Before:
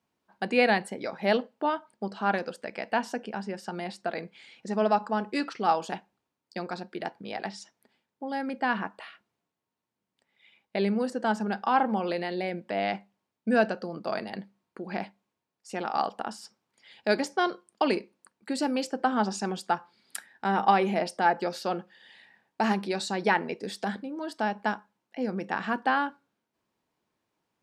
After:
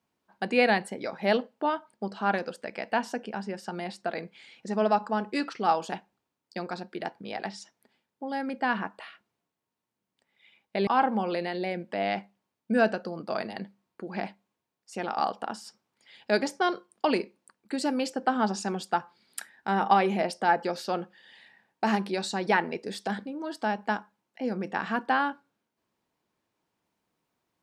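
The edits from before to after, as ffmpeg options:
-filter_complex "[0:a]asplit=2[s0][s1];[s0]atrim=end=10.872[s2];[s1]atrim=start=11.638[s3];[s2][s3]acrossfade=d=0.004:c1=hsin:c2=hsin"

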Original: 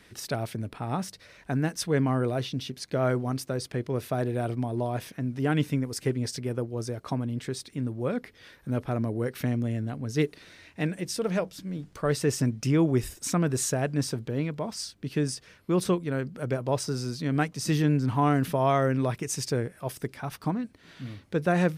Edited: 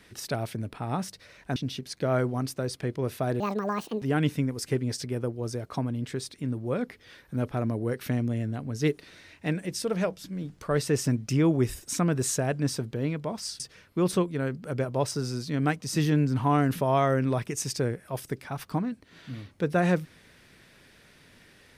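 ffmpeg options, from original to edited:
-filter_complex "[0:a]asplit=5[s0][s1][s2][s3][s4];[s0]atrim=end=1.562[s5];[s1]atrim=start=2.468:end=4.314[s6];[s2]atrim=start=4.31:end=5.36,asetpts=PTS-STARTPTS,asetrate=74970,aresample=44100,atrim=end_sample=27238,asetpts=PTS-STARTPTS[s7];[s3]atrim=start=5.356:end=14.942[s8];[s4]atrim=start=15.318[s9];[s5][s6]acrossfade=d=0.004:c1=hsin:c2=hsin[s10];[s10][s7]acrossfade=d=0.004:c1=hsin:c2=hsin[s11];[s11][s8]acrossfade=d=0.004:c1=hsin:c2=hsin[s12];[s12][s9]acrossfade=d=0.004:c1=hsin:c2=hsin"

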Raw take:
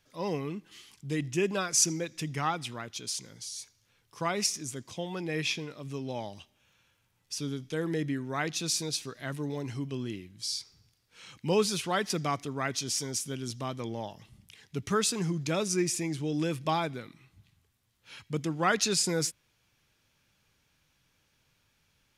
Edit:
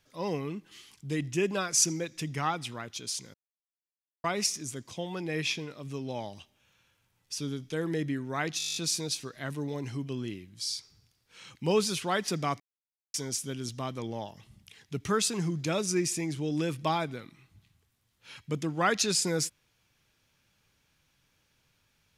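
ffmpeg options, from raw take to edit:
-filter_complex "[0:a]asplit=14[s0][s1][s2][s3][s4][s5][s6][s7][s8][s9][s10][s11][s12][s13];[s0]atrim=end=3.34,asetpts=PTS-STARTPTS,afade=t=out:st=3.336:d=0.004:c=hsin[s14];[s1]atrim=start=3.34:end=4.24,asetpts=PTS-STARTPTS,volume=0[s15];[s2]atrim=start=4.24:end=8.602,asetpts=PTS-STARTPTS,afade=t=in:d=0.004:c=hsin[s16];[s3]atrim=start=8.578:end=8.602[s17];[s4]atrim=start=8.578:end=8.602[s18];[s5]atrim=start=8.578:end=8.602[s19];[s6]atrim=start=8.578:end=8.602[s20];[s7]atrim=start=8.578:end=8.602[s21];[s8]atrim=start=8.578:end=8.602[s22];[s9]atrim=start=8.578:end=8.602[s23];[s10]atrim=start=8.578:end=8.602[s24];[s11]atrim=start=8.578:end=12.42,asetpts=PTS-STARTPTS,afade=t=out:st=3.838:d=0.004:c=hsin[s25];[s12]atrim=start=12.42:end=12.96,asetpts=PTS-STARTPTS,volume=0[s26];[s13]atrim=start=12.96,asetpts=PTS-STARTPTS,afade=t=in:d=0.004:c=hsin[s27];[s14][s15][s16]concat=n=3:v=0:a=1[s28];[s28][s17]acrossfade=d=0.004:c1=hsin:c2=hsin[s29];[s29][s18]acrossfade=d=0.004:c1=hsin:c2=hsin[s30];[s30][s19]acrossfade=d=0.004:c1=hsin:c2=hsin[s31];[s31][s20]acrossfade=d=0.004:c1=hsin:c2=hsin[s32];[s32][s21]acrossfade=d=0.004:c1=hsin:c2=hsin[s33];[s33][s22]acrossfade=d=0.004:c1=hsin:c2=hsin[s34];[s34][s23]acrossfade=d=0.004:c1=hsin:c2=hsin[s35];[s35][s24]acrossfade=d=0.004:c1=hsin:c2=hsin[s36];[s25][s26][s27]concat=n=3:v=0:a=1[s37];[s36][s37]acrossfade=d=0.004:c1=hsin:c2=hsin"

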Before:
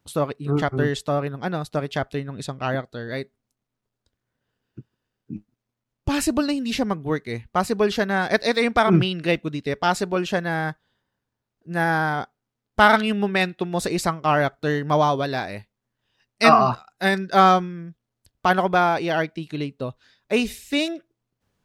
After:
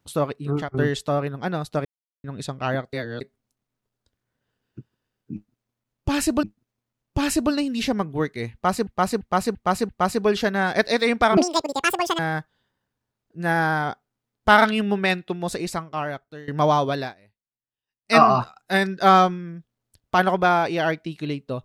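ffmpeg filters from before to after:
-filter_complex "[0:a]asplit=16[s0][s1][s2][s3][s4][s5][s6][s7][s8][s9][s10][s11][s12][s13][s14][s15];[s0]atrim=end=0.74,asetpts=PTS-STARTPTS,afade=t=out:st=0.44:d=0.3:silence=0.188365[s16];[s1]atrim=start=0.74:end=1.85,asetpts=PTS-STARTPTS,afade=t=in:d=0.004:c=hsin:silence=0.188365,afade=t=out:st=1.106:d=0.004:c=hsin[s17];[s2]atrim=start=1.85:end=2.24,asetpts=PTS-STARTPTS,volume=0[s18];[s3]atrim=start=2.24:end=2.932,asetpts=PTS-STARTPTS,afade=t=in:d=0.004:c=hsin[s19];[s4]atrim=start=2.928:end=3.212,asetpts=PTS-STARTPTS,areverse[s20];[s5]atrim=start=3.208:end=6.432[s21];[s6]atrim=start=5.338:end=7.782[s22];[s7]atrim=start=7.438:end=7.782[s23];[s8]atrim=start=7.438:end=7.782[s24];[s9]atrim=start=7.438:end=7.782[s25];[s10]atrim=start=7.438:end=8.924[s26];[s11]atrim=start=8.92:end=10.5,asetpts=PTS-STARTPTS,asetrate=85113,aresample=44100[s27];[s12]atrim=start=10.496:end=14.79,asetpts=PTS-STARTPTS,afade=t=out:st=2.834:d=1.46:silence=0.0891251[s28];[s13]atrim=start=14.79:end=15.45,asetpts=PTS-STARTPTS,afade=t=in:d=0.004:c=hsin:silence=0.0891251,afade=t=out:st=0.51:d=0.15:silence=0.0707946[s29];[s14]atrim=start=15.45:end=16.34,asetpts=PTS-STARTPTS,volume=0.0708[s30];[s15]atrim=start=16.34,asetpts=PTS-STARTPTS,afade=t=in:d=0.15:silence=0.0707946[s31];[s16][s17][s18][s19]concat=n=4:v=0:a=1[s32];[s32][s20]acrossfade=d=0.004:c1=hsin:c2=hsin[s33];[s33][s21]acrossfade=d=0.004:c1=hsin:c2=hsin[s34];[s34][s22]acrossfade=d=0.004:c1=hsin:c2=hsin[s35];[s35][s23]acrossfade=d=0.004:c1=hsin:c2=hsin[s36];[s36][s24]acrossfade=d=0.004:c1=hsin:c2=hsin[s37];[s37][s25]acrossfade=d=0.004:c1=hsin:c2=hsin[s38];[s38][s26]acrossfade=d=0.004:c1=hsin:c2=hsin[s39];[s39][s27]acrossfade=d=0.004:c1=hsin:c2=hsin[s40];[s28][s29][s30][s31]concat=n=4:v=0:a=1[s41];[s40][s41]acrossfade=d=0.004:c1=hsin:c2=hsin"

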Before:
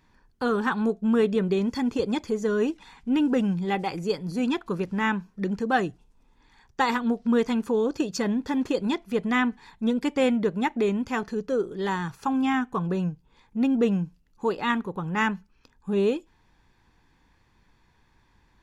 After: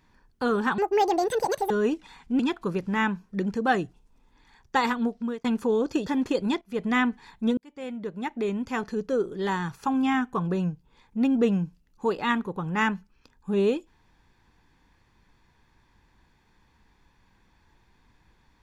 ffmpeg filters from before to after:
-filter_complex "[0:a]asplit=8[s0][s1][s2][s3][s4][s5][s6][s7];[s0]atrim=end=0.784[s8];[s1]atrim=start=0.78:end=2.47,asetpts=PTS-STARTPTS,asetrate=80703,aresample=44100,atrim=end_sample=40726,asetpts=PTS-STARTPTS[s9];[s2]atrim=start=2.466:end=3.162[s10];[s3]atrim=start=4.438:end=7.49,asetpts=PTS-STARTPTS,afade=t=out:st=2.422:d=0.63:c=qsin[s11];[s4]atrim=start=7.49:end=8.112,asetpts=PTS-STARTPTS,afade=t=in:d=0.004:c=hsin[s12];[s5]atrim=start=8.458:end=9.01,asetpts=PTS-STARTPTS,afade=t=out:st=0.548:d=0.004:c=hsin:silence=0.149624[s13];[s6]atrim=start=9.01:end=9.97,asetpts=PTS-STARTPTS,afade=t=in:d=0.26:silence=0.149624,afade=t=out:st=0.956:d=0.004:c=hsin[s14];[s7]atrim=start=9.97,asetpts=PTS-STARTPTS,afade=t=in:d=1.39[s15];[s8][s9]acrossfade=d=0.004:c1=hsin:c2=hsin[s16];[s16][s10]acrossfade=d=0.004:c1=hsin:c2=hsin[s17];[s11][s12]concat=n=2:v=0:a=1[s18];[s17][s18]acrossfade=d=0.004:c1=hsin:c2=hsin[s19];[s13][s14][s15]concat=n=3:v=0:a=1[s20];[s19][s20]acrossfade=d=0.004:c1=hsin:c2=hsin"

